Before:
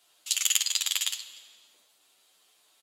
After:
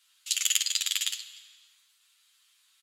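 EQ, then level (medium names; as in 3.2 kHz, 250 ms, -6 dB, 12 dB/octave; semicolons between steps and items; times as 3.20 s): high-pass 1.3 kHz 24 dB/octave; treble shelf 11 kHz -4.5 dB; 0.0 dB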